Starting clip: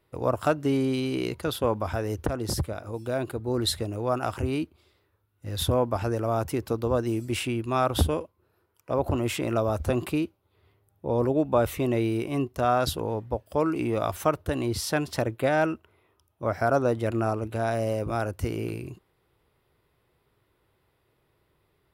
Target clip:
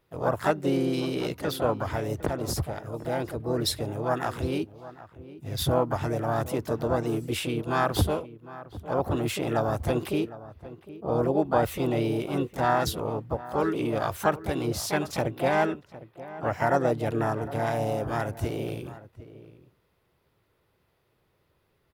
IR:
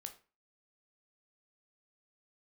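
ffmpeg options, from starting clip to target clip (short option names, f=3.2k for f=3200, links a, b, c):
-filter_complex "[0:a]asplit=3[a][b][c];[b]asetrate=55563,aresample=44100,atempo=0.793701,volume=-8dB[d];[c]asetrate=58866,aresample=44100,atempo=0.749154,volume=-7dB[e];[a][d][e]amix=inputs=3:normalize=0,asplit=2[f][g];[g]adelay=758,volume=-16dB,highshelf=f=4k:g=-17.1[h];[f][h]amix=inputs=2:normalize=0,volume=-2dB"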